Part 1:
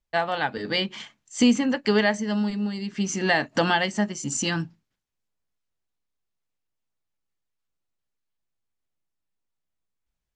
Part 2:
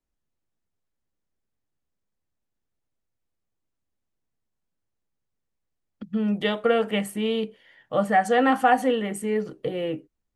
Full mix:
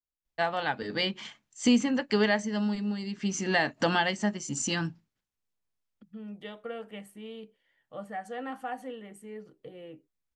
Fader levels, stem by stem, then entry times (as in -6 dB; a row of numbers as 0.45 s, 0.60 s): -4.0 dB, -17.5 dB; 0.25 s, 0.00 s